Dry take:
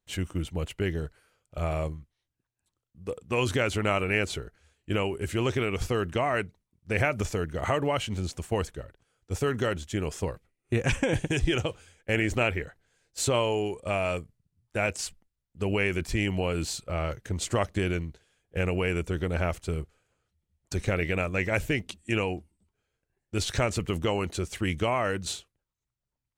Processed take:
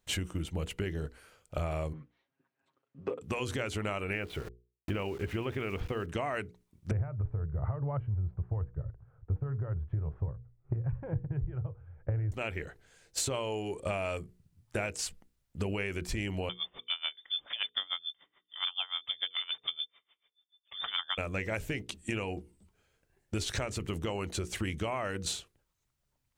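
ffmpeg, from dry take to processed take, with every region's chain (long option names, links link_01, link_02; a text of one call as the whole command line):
ffmpeg -i in.wav -filter_complex "[0:a]asettb=1/sr,asplit=3[link_01][link_02][link_03];[link_01]atrim=end=1.934[link_04];[link_02]atrim=start=1.93:end=3.21,asetpts=PTS-STARTPTS,afade=type=in:duration=0.004:curve=qsin,afade=type=out:start_time=1.276:duration=0.004:curve=qsin,highpass=220,lowpass=2100,aecho=1:1:7.4:0.94,atrim=end_sample=56448[link_05];[link_03]atrim=start=3.206[link_06];[link_04][link_05]acrossfade=duration=0.004:curve1=hsin:curve2=qsin[link_07];[link_07][link_06]acrossfade=duration=0.004:curve1=qsin:curve2=hsin,asettb=1/sr,asplit=3[link_08][link_09][link_10];[link_08]atrim=end=4.134[link_11];[link_09]atrim=start=4.13:end=6.06,asetpts=PTS-STARTPTS,afade=type=in:duration=0.004:curve=qsin,afade=type=out:start_time=1.926:duration=0.004:curve=qsin,lowpass=frequency=3100:width=0.5412,lowpass=frequency=3100:width=1.3066,aeval=exprs='val(0)*gte(abs(val(0)),0.00596)':channel_layout=same[link_12];[link_10]atrim=start=6.056[link_13];[link_11][link_12]acrossfade=duration=0.004:curve1=hsin:curve2=qsin[link_14];[link_14][link_13]acrossfade=duration=0.004:curve1=qsin:curve2=hsin,asettb=1/sr,asplit=3[link_15][link_16][link_17];[link_15]atrim=end=6.914[link_18];[link_16]atrim=start=6.91:end=12.32,asetpts=PTS-STARTPTS,afade=type=in:duration=0.004:curve=qsin,afade=type=out:start_time=5.406:duration=0.004:curve=qsin,lowpass=frequency=1300:width=0.5412,lowpass=frequency=1300:width=1.3066,lowshelf=frequency=170:width_type=q:width=3:gain=11[link_19];[link_17]atrim=start=12.316[link_20];[link_18][link_19]acrossfade=duration=0.004:curve1=hsin:curve2=qsin[link_21];[link_21][link_20]acrossfade=duration=0.004:curve1=qsin:curve2=hsin,asettb=1/sr,asplit=3[link_22][link_23][link_24];[link_22]atrim=end=16.494[link_25];[link_23]atrim=start=16.49:end=21.18,asetpts=PTS-STARTPTS,afade=type=in:duration=0.004:curve=qsin,afade=type=out:start_time=4.686:duration=0.004:curve=qsin,lowpass=frequency=3100:width_type=q:width=0.5098,lowpass=frequency=3100:width_type=q:width=0.6013,lowpass=frequency=3100:width_type=q:width=0.9,lowpass=frequency=3100:width_type=q:width=2.563,afreqshift=-3600,aeval=exprs='val(0)*pow(10,-26*(0.5-0.5*cos(2*PI*6.9*n/s))/20)':channel_layout=same[link_26];[link_24]atrim=start=21.176[link_27];[link_25][link_26]acrossfade=duration=0.004:curve1=hsin:curve2=qsin[link_28];[link_28][link_27]acrossfade=duration=0.004:curve1=qsin:curve2=hsin,acompressor=threshold=-39dB:ratio=8,bandreject=frequency=60:width_type=h:width=6,bandreject=frequency=120:width_type=h:width=6,bandreject=frequency=180:width_type=h:width=6,bandreject=frequency=240:width_type=h:width=6,bandreject=frequency=300:width_type=h:width=6,bandreject=frequency=360:width_type=h:width=6,bandreject=frequency=420:width_type=h:width=6,bandreject=frequency=480:width_type=h:width=6,volume=8dB" out.wav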